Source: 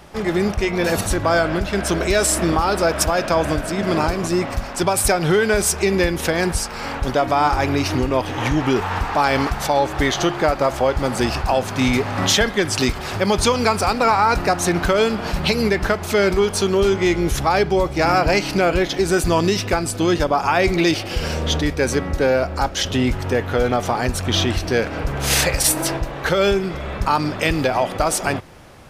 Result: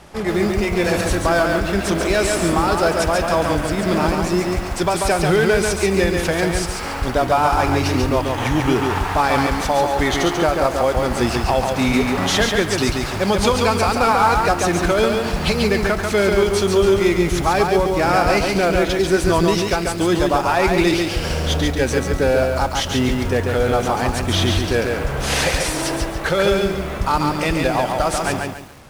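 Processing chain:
variable-slope delta modulation 64 kbit/s
feedback echo at a low word length 140 ms, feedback 35%, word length 7 bits, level −3.5 dB

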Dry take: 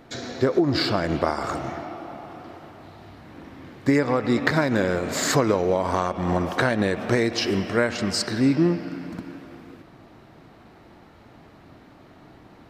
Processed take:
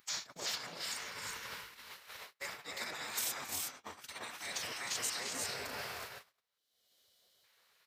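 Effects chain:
reversed playback
downward compressor 16 to 1, threshold −32 dBFS, peak gain reduction 18.5 dB
reversed playback
brickwall limiter −30 dBFS, peak gain reduction 9 dB
gate on every frequency bin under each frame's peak −15 dB weak
pitch vibrato 0.66 Hz 7.5 cents
gain on a spectral selection 0:10.03–0:12.00, 770–2,900 Hz −13 dB
phase-vocoder stretch with locked phases 0.62×
high-pass filter 79 Hz
high-shelf EQ 3,100 Hz +9.5 dB
on a send: multi-tap delay 271/307/343/367 ms −17/−10.5/−7.5/−5 dB
on the sum: noise gate −49 dBFS, range −46 dB
upward compression, threshold −55 dBFS
high-shelf EQ 8,000 Hz +9 dB
level +4.5 dB

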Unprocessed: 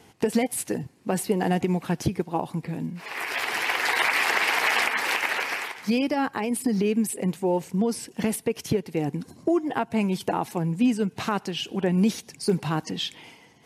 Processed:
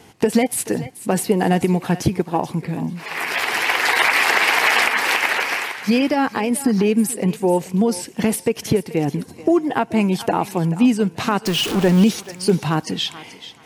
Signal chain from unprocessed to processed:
0:11.46–0:12.04: converter with a step at zero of −27 dBFS
feedback echo with a high-pass in the loop 433 ms, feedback 24%, high-pass 600 Hz, level −14 dB
level +6.5 dB

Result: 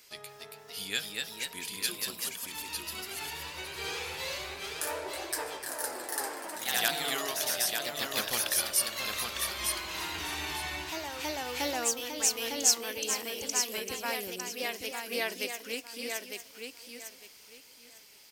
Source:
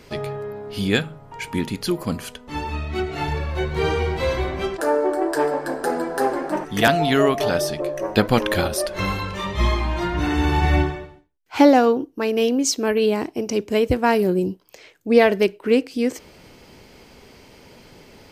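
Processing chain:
first-order pre-emphasis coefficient 0.97
hum removal 57.3 Hz, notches 3
on a send: repeating echo 904 ms, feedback 23%, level −5.5 dB
on the sum: delay with pitch and tempo change per echo 292 ms, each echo +1 semitone, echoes 2

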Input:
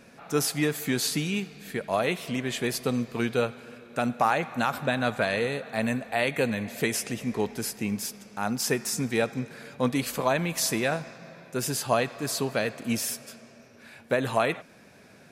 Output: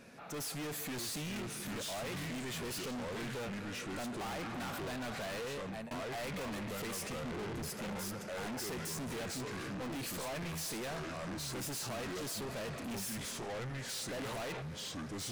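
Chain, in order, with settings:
automatic gain control gain up to 5 dB
delay with pitch and tempo change per echo 568 ms, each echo −4 semitones, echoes 2, each echo −6 dB
0:05.45–0:05.91: fade out
0:07.17–0:07.70: spectral tilt −2 dB per octave
soft clipping −35.5 dBFS, distortion −2 dB
level −3.5 dB

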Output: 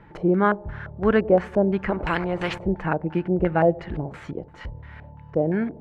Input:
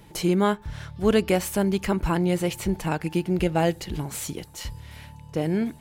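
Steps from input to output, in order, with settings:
feedback echo with a low-pass in the loop 94 ms, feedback 69%, low-pass 2,000 Hz, level −23 dB
auto-filter low-pass square 2.9 Hz 620–1,600 Hz
0:01.90–0:02.58: every bin compressed towards the loudest bin 2 to 1

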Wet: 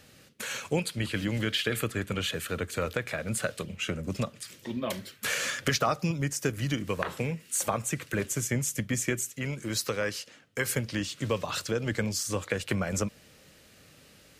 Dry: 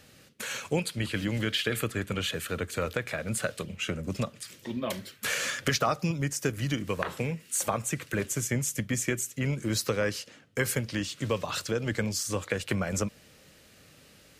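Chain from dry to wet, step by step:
0:09.30–0:10.70: low-shelf EQ 480 Hz −5.5 dB

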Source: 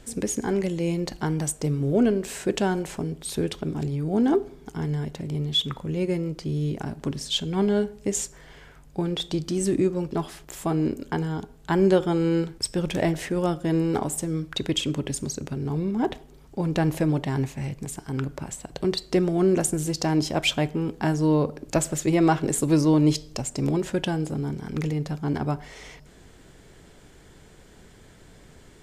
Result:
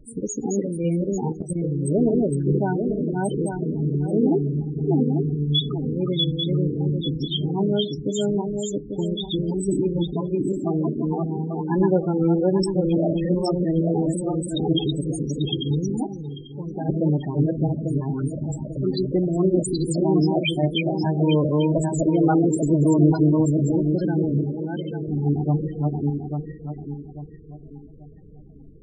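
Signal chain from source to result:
feedback delay that plays each chunk backwards 421 ms, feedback 59%, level −1 dB
0:16.03–0:16.89: tuned comb filter 400 Hz, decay 0.44 s, mix 60%
0:24.45–0:25.08: low-shelf EQ 280 Hz −8.5 dB
rectangular room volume 640 cubic metres, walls furnished, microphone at 0.49 metres
spectral peaks only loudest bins 16
0:01.32–0:01.89: output level in coarse steps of 12 dB

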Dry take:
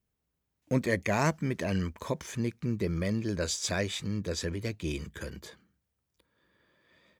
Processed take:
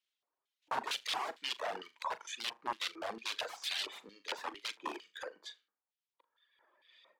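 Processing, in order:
high-pass filter 290 Hz 24 dB per octave
wrap-around overflow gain 30 dB
on a send: flutter between parallel walls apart 6.8 metres, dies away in 0.28 s
on the sum: reverb reduction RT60 2 s
auto-filter band-pass square 2.2 Hz 910–3,400 Hz
level +9 dB

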